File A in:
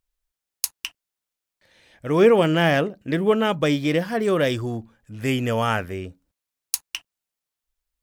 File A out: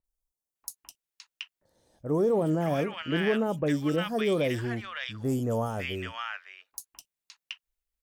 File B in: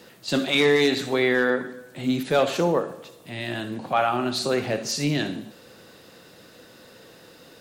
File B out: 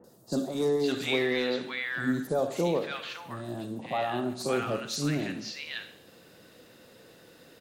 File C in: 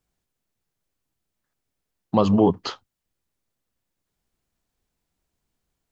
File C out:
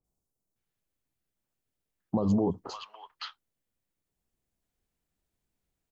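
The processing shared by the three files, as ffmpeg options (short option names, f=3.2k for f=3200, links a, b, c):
-filter_complex "[0:a]alimiter=limit=-13dB:level=0:latency=1:release=39,acrossover=split=1100|4900[a][b][c];[c]adelay=40[d];[b]adelay=560[e];[a][e][d]amix=inputs=3:normalize=0,volume=-4.5dB"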